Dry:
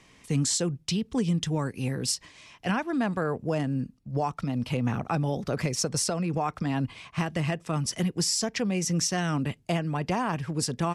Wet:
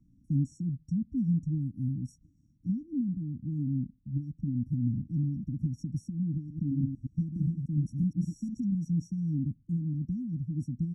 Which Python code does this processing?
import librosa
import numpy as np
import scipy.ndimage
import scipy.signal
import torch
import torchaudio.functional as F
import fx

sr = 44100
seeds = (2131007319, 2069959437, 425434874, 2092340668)

y = fx.reverse_delay(x, sr, ms=118, wet_db=-4, at=(6.36, 8.75))
y = fx.brickwall_bandstop(y, sr, low_hz=320.0, high_hz=5500.0)
y = fx.air_absorb(y, sr, metres=480.0)
y = y + 0.87 * np.pad(y, (int(0.9 * sr / 1000.0), 0))[:len(y)]
y = F.gain(torch.from_numpy(y), -5.0).numpy()